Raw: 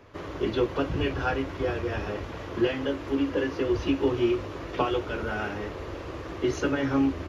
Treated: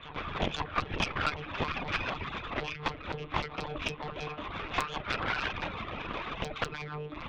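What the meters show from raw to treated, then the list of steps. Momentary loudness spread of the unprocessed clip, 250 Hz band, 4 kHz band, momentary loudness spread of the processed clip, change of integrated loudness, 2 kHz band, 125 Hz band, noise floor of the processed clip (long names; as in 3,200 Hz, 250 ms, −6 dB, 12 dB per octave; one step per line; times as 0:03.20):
10 LU, −14.0 dB, +1.5 dB, 7 LU, −6.0 dB, +0.5 dB, −6.0 dB, −45 dBFS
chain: lower of the sound and its delayed copy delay 0.81 ms
one-pitch LPC vocoder at 8 kHz 150 Hz
parametric band 3,000 Hz +6 dB 2 octaves
downward compressor 10 to 1, threshold −27 dBFS, peak gain reduction 9.5 dB
mains-hum notches 60/120/180/240/300/360/420/480/540/600 Hz
reverb reduction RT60 0.76 s
backwards echo 511 ms −13.5 dB
harmonic generator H 8 −32 dB, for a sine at −12.5 dBFS
low-shelf EQ 280 Hz −5.5 dB
harmonic generator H 4 −9 dB, 5 −19 dB, 8 −30 dB, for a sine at −13.5 dBFS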